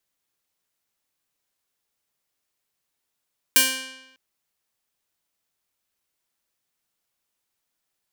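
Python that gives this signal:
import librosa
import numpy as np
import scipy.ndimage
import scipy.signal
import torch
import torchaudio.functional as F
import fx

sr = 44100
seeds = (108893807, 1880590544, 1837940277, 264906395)

y = fx.pluck(sr, length_s=0.6, note=60, decay_s=0.97, pick=0.4, brightness='bright')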